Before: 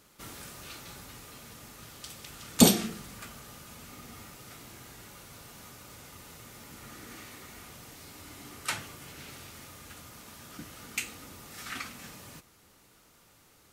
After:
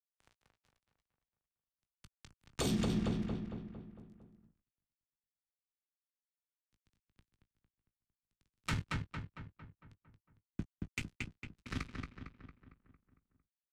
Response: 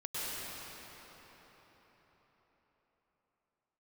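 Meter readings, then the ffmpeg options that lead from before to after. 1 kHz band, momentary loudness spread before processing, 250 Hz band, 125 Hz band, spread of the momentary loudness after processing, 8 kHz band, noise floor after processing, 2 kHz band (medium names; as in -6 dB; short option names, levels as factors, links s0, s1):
-9.0 dB, 13 LU, -8.0 dB, -2.0 dB, 22 LU, -18.0 dB, under -85 dBFS, -7.0 dB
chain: -filter_complex "[0:a]highshelf=f=2700:g=-10.5,aeval=exprs='sgn(val(0))*max(abs(val(0))-0.0112,0)':c=same,acrossover=split=100|2400[s0][s1][s2];[s0]acompressor=threshold=0.00224:ratio=4[s3];[s1]acompressor=threshold=0.0398:ratio=4[s4];[s2]acompressor=threshold=0.0178:ratio=4[s5];[s3][s4][s5]amix=inputs=3:normalize=0,asubboost=boost=11.5:cutoff=190,afftfilt=real='re*lt(hypot(re,im),0.398)':imag='im*lt(hypot(re,im),0.398)':win_size=1024:overlap=0.75,asoftclip=type=tanh:threshold=0.0668,asplit=2[s6][s7];[s7]adelay=19,volume=0.251[s8];[s6][s8]amix=inputs=2:normalize=0,adynamicsmooth=sensitivity=6.5:basefreq=7700,asplit=2[s9][s10];[s10]adelay=227,lowpass=f=3000:p=1,volume=0.596,asplit=2[s11][s12];[s12]adelay=227,lowpass=f=3000:p=1,volume=0.54,asplit=2[s13][s14];[s14]adelay=227,lowpass=f=3000:p=1,volume=0.54,asplit=2[s15][s16];[s16]adelay=227,lowpass=f=3000:p=1,volume=0.54,asplit=2[s17][s18];[s18]adelay=227,lowpass=f=3000:p=1,volume=0.54,asplit=2[s19][s20];[s20]adelay=227,lowpass=f=3000:p=1,volume=0.54,asplit=2[s21][s22];[s22]adelay=227,lowpass=f=3000:p=1,volume=0.54[s23];[s11][s13][s15][s17][s19][s21][s23]amix=inputs=7:normalize=0[s24];[s9][s24]amix=inputs=2:normalize=0,alimiter=level_in=2.51:limit=0.0631:level=0:latency=1:release=90,volume=0.398,volume=2.24"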